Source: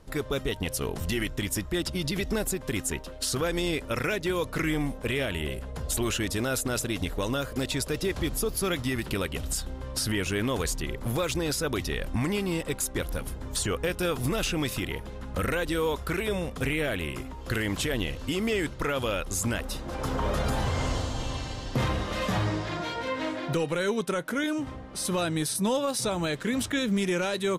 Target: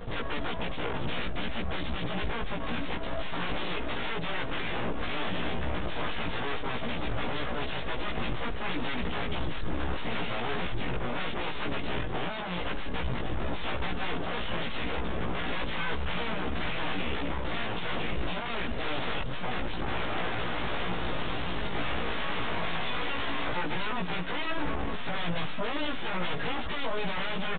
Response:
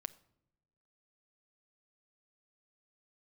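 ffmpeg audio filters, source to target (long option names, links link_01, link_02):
-filter_complex "[0:a]aecho=1:1:4.6:0.74,acompressor=threshold=-32dB:ratio=4,aeval=exprs='0.0891*sin(PI/2*6.31*val(0)/0.0891)':channel_layout=same,aecho=1:1:1083|2166|3249|4332:0.211|0.0803|0.0305|0.0116,aeval=exprs='clip(val(0),-1,0.0112)':channel_layout=same,asetrate=46722,aresample=44100,atempo=0.943874,asplit=2[link_01][link_02];[1:a]atrim=start_sample=2205,adelay=17[link_03];[link_02][link_03]afir=irnorm=-1:irlink=0,volume=3dB[link_04];[link_01][link_04]amix=inputs=2:normalize=0,aresample=8000,aresample=44100,volume=-7dB"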